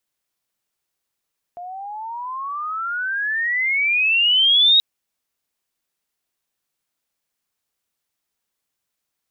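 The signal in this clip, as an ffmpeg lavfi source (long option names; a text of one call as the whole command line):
ffmpeg -f lavfi -i "aevalsrc='pow(10,(-10+20.5*(t/3.23-1))/20)*sin(2*PI*694*3.23/(29.5*log(2)/12)*(exp(29.5*log(2)/12*t/3.23)-1))':duration=3.23:sample_rate=44100" out.wav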